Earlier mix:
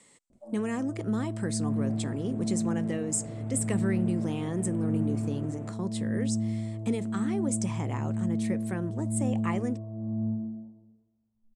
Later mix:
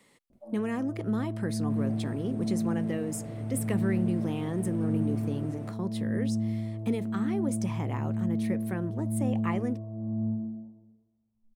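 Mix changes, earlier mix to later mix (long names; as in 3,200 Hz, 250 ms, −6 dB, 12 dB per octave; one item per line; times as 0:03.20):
second sound: remove moving average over 9 samples
master: remove low-pass with resonance 7,900 Hz, resonance Q 4.5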